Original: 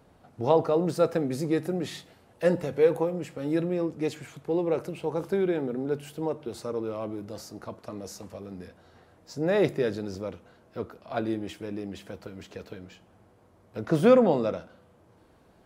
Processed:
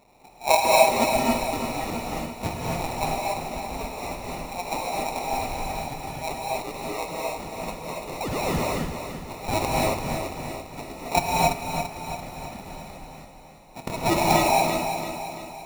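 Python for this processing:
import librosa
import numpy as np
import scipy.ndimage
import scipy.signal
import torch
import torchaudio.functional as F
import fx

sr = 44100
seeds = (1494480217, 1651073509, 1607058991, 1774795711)

y = scipy.signal.sosfilt(scipy.signal.butter(16, 670.0, 'highpass', fs=sr, output='sos'), x)
y = fx.spec_paint(y, sr, seeds[0], shape='fall', start_s=8.2, length_s=0.39, low_hz=1600.0, high_hz=4100.0, level_db=-37.0)
y = fx.dynamic_eq(y, sr, hz=890.0, q=0.98, threshold_db=-53.0, ratio=4.0, max_db=6, at=(11.14, 13.89))
y = fx.sample_hold(y, sr, seeds[1], rate_hz=1600.0, jitter_pct=0)
y = fx.echo_feedback(y, sr, ms=338, feedback_pct=51, wet_db=-8.0)
y = fx.rev_gated(y, sr, seeds[2], gate_ms=310, shape='rising', drr_db=-4.0)
y = F.gain(torch.from_numpy(y), 7.5).numpy()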